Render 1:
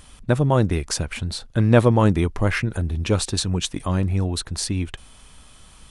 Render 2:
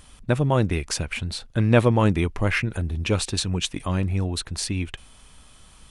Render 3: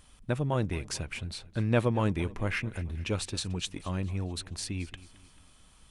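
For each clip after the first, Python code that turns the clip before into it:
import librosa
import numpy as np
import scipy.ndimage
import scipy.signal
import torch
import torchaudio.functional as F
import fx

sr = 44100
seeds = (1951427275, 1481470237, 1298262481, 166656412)

y1 = fx.dynamic_eq(x, sr, hz=2500.0, q=1.8, threshold_db=-45.0, ratio=4.0, max_db=6)
y1 = F.gain(torch.from_numpy(y1), -2.5).numpy()
y2 = fx.echo_feedback(y1, sr, ms=220, feedback_pct=49, wet_db=-19)
y2 = F.gain(torch.from_numpy(y2), -8.5).numpy()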